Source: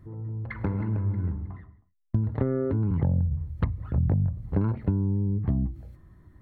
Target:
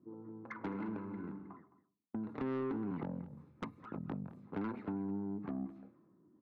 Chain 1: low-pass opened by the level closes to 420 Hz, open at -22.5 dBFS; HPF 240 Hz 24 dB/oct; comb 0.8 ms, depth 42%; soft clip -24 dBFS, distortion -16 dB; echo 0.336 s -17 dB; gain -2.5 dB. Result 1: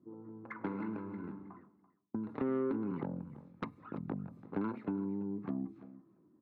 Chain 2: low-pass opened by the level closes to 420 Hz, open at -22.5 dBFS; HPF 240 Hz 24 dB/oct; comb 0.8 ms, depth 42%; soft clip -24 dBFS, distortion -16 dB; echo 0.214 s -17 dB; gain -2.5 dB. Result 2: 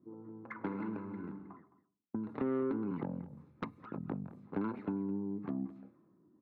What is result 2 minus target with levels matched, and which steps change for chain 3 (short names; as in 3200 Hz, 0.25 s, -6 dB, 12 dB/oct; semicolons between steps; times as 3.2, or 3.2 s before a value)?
soft clip: distortion -7 dB
change: soft clip -30.5 dBFS, distortion -10 dB